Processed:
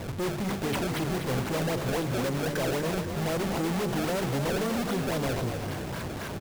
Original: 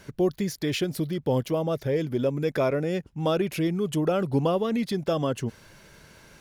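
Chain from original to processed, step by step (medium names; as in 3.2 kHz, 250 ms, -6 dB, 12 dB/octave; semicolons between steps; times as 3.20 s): companding laws mixed up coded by mu; high-pass 56 Hz 24 dB/octave; peaking EQ 97 Hz +14 dB 0.23 oct; hum notches 50/100/150/200/250/300/350/400 Hz; valve stage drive 30 dB, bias 0.3; in parallel at -5 dB: Schmitt trigger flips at -52 dBFS; on the sum: decimation with a swept rate 26×, swing 160% 3.8 Hz; on a send: frequency-shifting echo 244 ms, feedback 54%, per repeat +31 Hz, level -7.5 dB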